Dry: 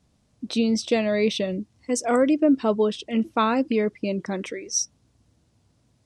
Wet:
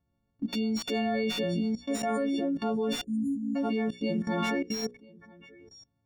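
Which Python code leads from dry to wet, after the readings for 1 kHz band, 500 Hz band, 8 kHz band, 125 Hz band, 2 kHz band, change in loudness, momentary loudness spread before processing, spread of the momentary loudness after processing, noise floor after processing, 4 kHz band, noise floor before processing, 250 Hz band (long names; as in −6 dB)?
−7.0 dB, −8.5 dB, −15.0 dB, −2.5 dB, −5.0 dB, −6.5 dB, 10 LU, 3 LU, −77 dBFS, −4.0 dB, −66 dBFS, −5.0 dB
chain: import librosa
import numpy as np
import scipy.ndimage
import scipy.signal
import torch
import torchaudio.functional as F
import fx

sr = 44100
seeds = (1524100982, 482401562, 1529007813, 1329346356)

p1 = fx.freq_snap(x, sr, grid_st=4)
p2 = fx.rider(p1, sr, range_db=3, speed_s=0.5)
p3 = p1 + (p2 * librosa.db_to_amplitude(1.0))
p4 = fx.tilt_eq(p3, sr, slope=-2.0)
p5 = p4 + fx.echo_single(p4, sr, ms=992, db=-11.5, dry=0)
p6 = fx.env_lowpass(p5, sr, base_hz=2100.0, full_db=-9.5)
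p7 = fx.level_steps(p6, sr, step_db=24)
p8 = fx.spec_erase(p7, sr, start_s=3.04, length_s=0.52, low_hz=320.0, high_hz=6600.0)
p9 = fx.hum_notches(p8, sr, base_hz=60, count=9)
p10 = fx.slew_limit(p9, sr, full_power_hz=140.0)
y = p10 * librosa.db_to_amplitude(-4.0)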